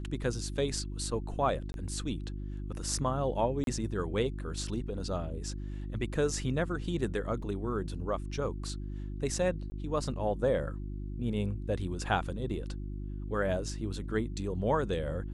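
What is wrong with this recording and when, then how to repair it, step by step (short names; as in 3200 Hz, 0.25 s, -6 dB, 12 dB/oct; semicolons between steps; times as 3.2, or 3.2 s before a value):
hum 50 Hz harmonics 7 -38 dBFS
1.72–1.74 gap 21 ms
3.64–3.67 gap 32 ms
7.42 gap 4.6 ms
9.7–9.72 gap 20 ms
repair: de-hum 50 Hz, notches 7; interpolate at 1.72, 21 ms; interpolate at 3.64, 32 ms; interpolate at 7.42, 4.6 ms; interpolate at 9.7, 20 ms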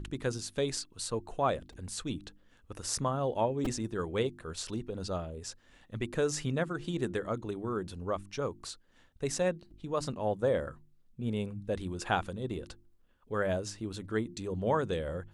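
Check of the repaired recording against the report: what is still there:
none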